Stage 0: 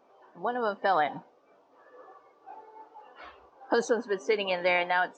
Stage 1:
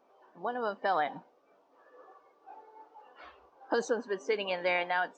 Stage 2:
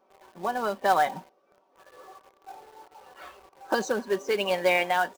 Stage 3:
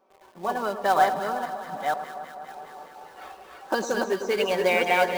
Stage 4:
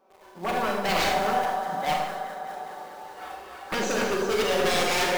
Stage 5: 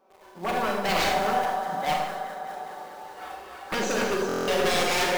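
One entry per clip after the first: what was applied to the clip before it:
parametric band 110 Hz −12 dB 0.4 octaves; level −4 dB
comb filter 5.3 ms, depth 52%; in parallel at −3 dB: log-companded quantiser 4 bits
delay that plays each chunk backwards 485 ms, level −2.5 dB; delay that swaps between a low-pass and a high-pass 102 ms, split 1,300 Hz, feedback 86%, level −10 dB
wave folding −22.5 dBFS; four-comb reverb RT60 0.77 s, combs from 31 ms, DRR 0.5 dB; level +1 dB
buffer that repeats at 0:04.27, samples 1,024, times 8

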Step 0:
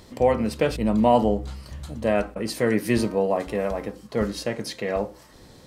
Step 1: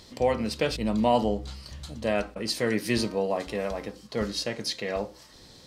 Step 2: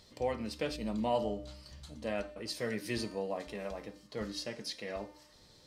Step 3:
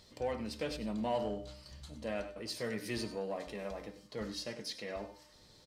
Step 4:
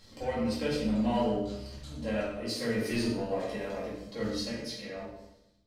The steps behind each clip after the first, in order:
parametric band 4,500 Hz +10 dB 1.6 octaves; level −5 dB
tuned comb filter 300 Hz, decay 0.85 s, mix 70%; flanger 0.37 Hz, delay 1.4 ms, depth 5.5 ms, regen −66%; level +4.5 dB
single-tap delay 98 ms −14.5 dB; in parallel at −3.5 dB: soft clipping −35 dBFS, distortion −9 dB; on the sum: level −5 dB
fade-out on the ending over 1.39 s; rectangular room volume 200 cubic metres, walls mixed, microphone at 2.2 metres; level −1.5 dB

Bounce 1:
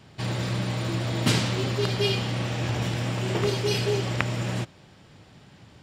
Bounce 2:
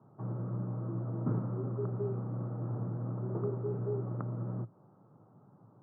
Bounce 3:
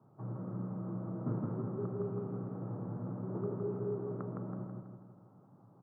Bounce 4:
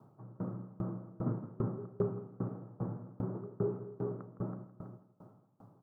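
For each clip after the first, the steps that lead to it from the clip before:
Chebyshev band-pass filter 110–1,300 Hz, order 5; dynamic equaliser 870 Hz, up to −8 dB, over −45 dBFS, Q 0.96; level −7 dB
repeating echo 163 ms, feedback 50%, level −3 dB; level −3.5 dB
convolution reverb RT60 3.8 s, pre-delay 120 ms, DRR 19 dB; tremolo with a ramp in dB decaying 2.5 Hz, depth 25 dB; level +7 dB

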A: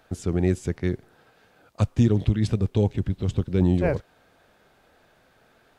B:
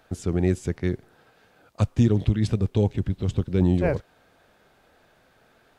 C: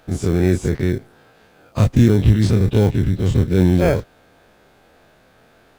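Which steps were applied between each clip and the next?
no processing that can be heard
every bin's largest magnitude spread in time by 60 ms; in parallel at −10 dB: sample-rate reduction 1,900 Hz, jitter 0%; on the sum: level +2 dB

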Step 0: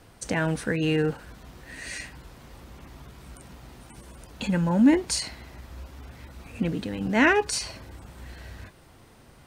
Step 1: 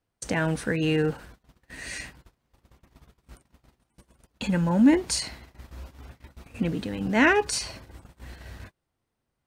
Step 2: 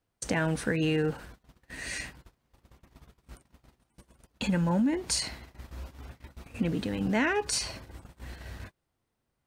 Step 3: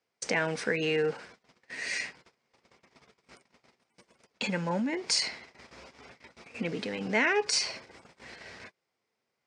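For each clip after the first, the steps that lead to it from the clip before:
noise gate −42 dBFS, range −28 dB
downward compressor 12 to 1, threshold −23 dBFS, peak gain reduction 11 dB
loudspeaker in its box 250–7,900 Hz, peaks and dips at 300 Hz −6 dB, 440 Hz +4 dB, 2,200 Hz +8 dB, 5,100 Hz +7 dB

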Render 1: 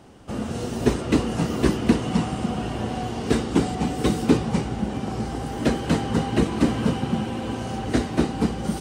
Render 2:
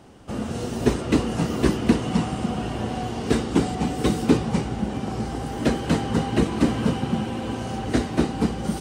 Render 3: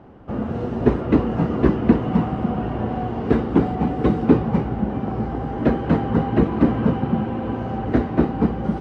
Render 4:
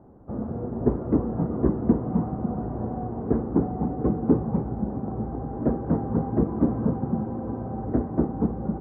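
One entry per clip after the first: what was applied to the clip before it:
no processing that can be heard
low-pass filter 1,500 Hz 12 dB per octave; level +3.5 dB
Bessel low-pass filter 840 Hz, order 4; level −5 dB

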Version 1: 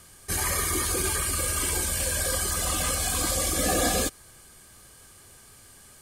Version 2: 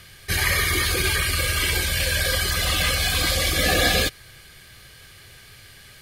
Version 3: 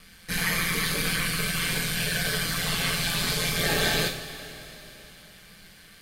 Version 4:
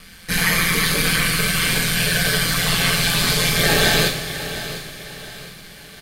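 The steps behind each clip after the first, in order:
octave-band graphic EQ 125/250/1,000/2,000/4,000/8,000 Hz +5/−7/−7/+8/+7/−11 dB; level +5.5 dB
ring modulation 86 Hz; coupled-rooms reverb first 0.41 s, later 3.9 s, from −16 dB, DRR 1 dB; level −4 dB
repeating echo 705 ms, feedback 39%, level −13.5 dB; level +8 dB

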